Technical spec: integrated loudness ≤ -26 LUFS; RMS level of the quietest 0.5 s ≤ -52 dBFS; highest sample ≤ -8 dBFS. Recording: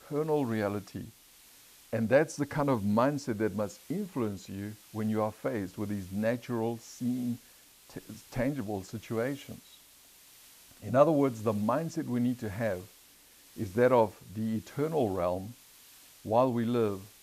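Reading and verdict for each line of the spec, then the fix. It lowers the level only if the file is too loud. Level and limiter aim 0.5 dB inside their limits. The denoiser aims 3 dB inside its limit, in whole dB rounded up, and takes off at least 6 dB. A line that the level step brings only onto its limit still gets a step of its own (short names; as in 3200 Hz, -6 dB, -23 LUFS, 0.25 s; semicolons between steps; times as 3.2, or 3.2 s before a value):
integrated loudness -31.0 LUFS: OK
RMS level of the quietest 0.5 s -58 dBFS: OK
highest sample -9.5 dBFS: OK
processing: none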